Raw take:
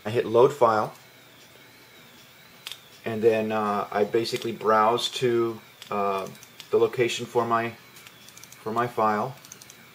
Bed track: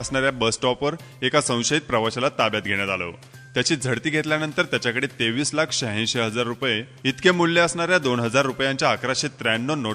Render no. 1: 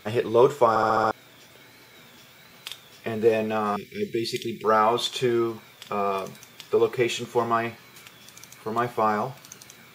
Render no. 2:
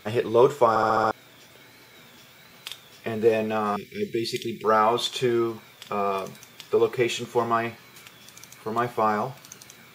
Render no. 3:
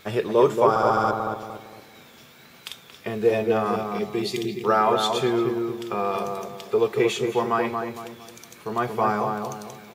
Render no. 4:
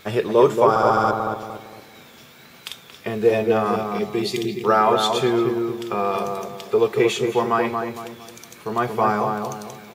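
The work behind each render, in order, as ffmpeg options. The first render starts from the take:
ffmpeg -i in.wav -filter_complex "[0:a]asettb=1/sr,asplit=3[link_01][link_02][link_03];[link_01]atrim=end=3.764[link_04];[link_02]atrim=start=3.76:end=4.64,asetpts=PTS-STARTPTS,afade=type=in:duration=0.004:curve=qsin,afade=type=out:start_time=0.876:duration=0.004:curve=qsin,asuperstop=centerf=870:order=12:qfactor=0.6[link_05];[link_03]atrim=start=4.636[link_06];[link_04][link_05]acrossfade=duration=0.004:curve1=hsin:curve2=qsin[link_07];[link_07][link_06]acrossfade=duration=0.004:curve1=qsin:curve2=hsin,asplit=7[link_08][link_09][link_10][link_11][link_12][link_13][link_14];[link_08]atrim=end=0.762[link_15];[link_09]atrim=start=0.688:end=0.762[link_16];[link_10]atrim=start=0.688:end=0.762[link_17];[link_11]atrim=start=0.688:end=0.762[link_18];[link_12]atrim=start=0.688:end=0.762[link_19];[link_13]atrim=start=0.688:end=0.762[link_20];[link_14]atrim=start=1.108[link_21];[link_15][link_16]acrossfade=duration=0.004:curve1=hsin:curve2=hsin[link_22];[link_22][link_17]acrossfade=duration=0.004:curve1=hsin:curve2=hsin[link_23];[link_23][link_18]acrossfade=duration=0.004:curve1=hsin:curve2=hsin[link_24];[link_24][link_19]acrossfade=duration=0.004:curve1=hsin:curve2=hsin[link_25];[link_25][link_20]acrossfade=duration=0.004:curve1=hsin:curve2=hsin[link_26];[link_26][link_21]acrossfade=duration=0.004:curve1=hsin:curve2=hsin" out.wav
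ffmpeg -i in.wav -af anull out.wav
ffmpeg -i in.wav -filter_complex "[0:a]asplit=2[link_01][link_02];[link_02]adelay=229,lowpass=frequency=1100:poles=1,volume=-3dB,asplit=2[link_03][link_04];[link_04]adelay=229,lowpass=frequency=1100:poles=1,volume=0.43,asplit=2[link_05][link_06];[link_06]adelay=229,lowpass=frequency=1100:poles=1,volume=0.43,asplit=2[link_07][link_08];[link_08]adelay=229,lowpass=frequency=1100:poles=1,volume=0.43,asplit=2[link_09][link_10];[link_10]adelay=229,lowpass=frequency=1100:poles=1,volume=0.43,asplit=2[link_11][link_12];[link_12]adelay=229,lowpass=frequency=1100:poles=1,volume=0.43[link_13];[link_01][link_03][link_05][link_07][link_09][link_11][link_13]amix=inputs=7:normalize=0" out.wav
ffmpeg -i in.wav -af "volume=3dB,alimiter=limit=-2dB:level=0:latency=1" out.wav

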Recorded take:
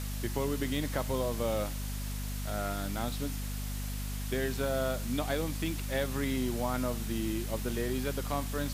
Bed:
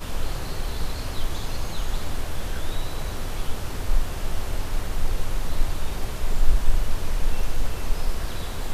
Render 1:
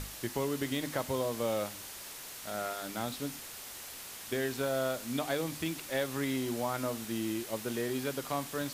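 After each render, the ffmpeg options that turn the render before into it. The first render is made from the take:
ffmpeg -i in.wav -af "bandreject=frequency=50:width_type=h:width=6,bandreject=frequency=100:width_type=h:width=6,bandreject=frequency=150:width_type=h:width=6,bandreject=frequency=200:width_type=h:width=6,bandreject=frequency=250:width_type=h:width=6,bandreject=frequency=300:width_type=h:width=6" out.wav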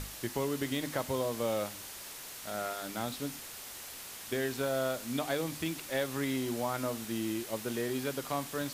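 ffmpeg -i in.wav -af anull out.wav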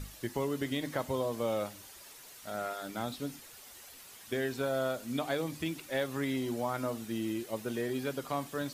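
ffmpeg -i in.wav -af "afftdn=noise_reduction=9:noise_floor=-46" out.wav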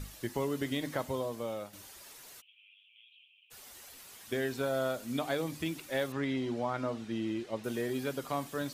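ffmpeg -i in.wav -filter_complex "[0:a]asplit=3[link_01][link_02][link_03];[link_01]afade=type=out:start_time=2.4:duration=0.02[link_04];[link_02]asuperpass=centerf=2800:order=8:qfactor=3.6,afade=type=in:start_time=2.4:duration=0.02,afade=type=out:start_time=3.5:duration=0.02[link_05];[link_03]afade=type=in:start_time=3.5:duration=0.02[link_06];[link_04][link_05][link_06]amix=inputs=3:normalize=0,asettb=1/sr,asplit=3[link_07][link_08][link_09];[link_07]atrim=end=6.124[link_10];[link_08]atrim=start=6.12:end=7.64,asetpts=PTS-STARTPTS,afade=type=in:duration=0.004:curve=qsin,afade=type=out:start_time=1.516:duration=0.004:curve=qsin,lowpass=4600[link_11];[link_09]atrim=start=7.636[link_12];[link_10][link_11]acrossfade=duration=0.004:curve1=hsin:curve2=qsin[link_13];[link_13][link_12]acrossfade=duration=0.004:curve1=qsin:curve2=hsin,asplit=2[link_14][link_15];[link_14]atrim=end=1.73,asetpts=PTS-STARTPTS,afade=type=out:start_time=0.92:duration=0.81:silence=0.354813[link_16];[link_15]atrim=start=1.73,asetpts=PTS-STARTPTS,afade=type=in:duration=0.004:curve=hsin:silence=0.354813[link_17];[link_16][link_17]concat=n=2:v=0:a=1" out.wav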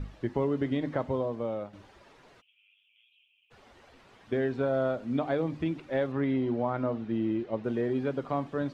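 ffmpeg -i in.wav -af "lowpass=3300,tiltshelf=frequency=1500:gain=6" out.wav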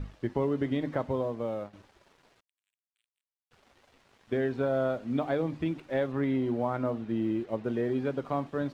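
ffmpeg -i in.wav -af "aeval=exprs='sgn(val(0))*max(abs(val(0))-0.00119,0)':channel_layout=same" out.wav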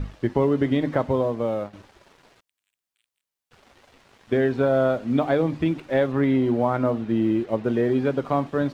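ffmpeg -i in.wav -af "volume=8dB" out.wav

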